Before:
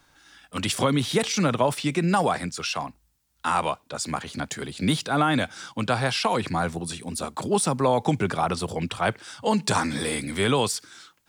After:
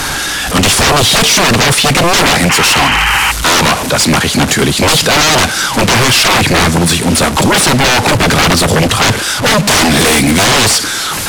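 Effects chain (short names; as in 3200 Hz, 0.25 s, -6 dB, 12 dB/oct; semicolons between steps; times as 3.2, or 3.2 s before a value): delta modulation 64 kbps, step -36 dBFS; painted sound noise, 2.49–3.32, 760–3200 Hz -35 dBFS; sine folder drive 18 dB, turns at -9.5 dBFS; gain +4 dB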